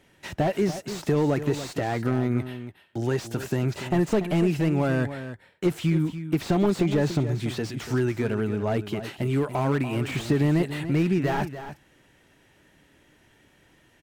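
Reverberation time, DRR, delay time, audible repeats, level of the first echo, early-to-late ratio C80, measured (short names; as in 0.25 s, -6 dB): none, none, 0.288 s, 1, -11.5 dB, none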